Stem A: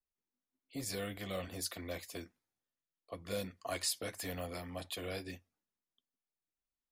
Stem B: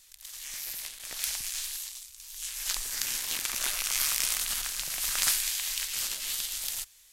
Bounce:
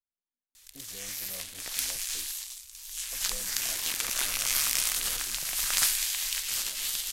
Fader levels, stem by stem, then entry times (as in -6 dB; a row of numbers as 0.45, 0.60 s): -10.5, +1.0 dB; 0.00, 0.55 s